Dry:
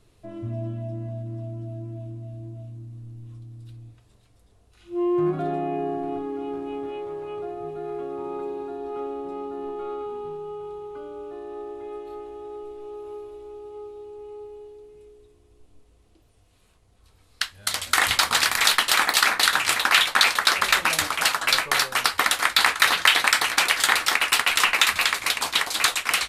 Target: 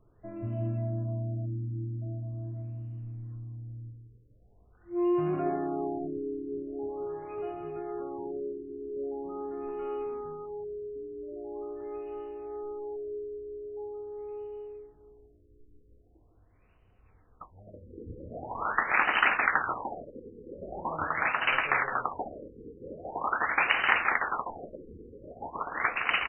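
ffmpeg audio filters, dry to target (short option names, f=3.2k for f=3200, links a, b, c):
-filter_complex "[0:a]asplit=2[a][b];[b]adelay=163,lowpass=f=4.7k:p=1,volume=-7dB,asplit=2[c][d];[d]adelay=163,lowpass=f=4.7k:p=1,volume=0.26,asplit=2[e][f];[f]adelay=163,lowpass=f=4.7k:p=1,volume=0.26[g];[a][c][e][g]amix=inputs=4:normalize=0,afftfilt=real='re*lt(b*sr/1024,500*pow(3100/500,0.5+0.5*sin(2*PI*0.43*pts/sr)))':imag='im*lt(b*sr/1024,500*pow(3100/500,0.5+0.5*sin(2*PI*0.43*pts/sr)))':win_size=1024:overlap=0.75,volume=-3.5dB"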